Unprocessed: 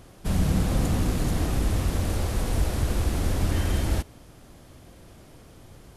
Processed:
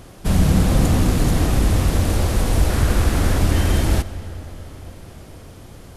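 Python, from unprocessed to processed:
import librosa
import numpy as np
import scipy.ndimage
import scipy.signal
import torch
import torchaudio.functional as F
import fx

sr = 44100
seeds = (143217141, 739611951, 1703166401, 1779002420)

y = fx.peak_eq(x, sr, hz=1500.0, db=4.5, octaves=1.0, at=(2.7, 3.39))
y = fx.rev_freeverb(y, sr, rt60_s=4.9, hf_ratio=0.7, predelay_ms=55, drr_db=14.5)
y = y * librosa.db_to_amplitude(7.5)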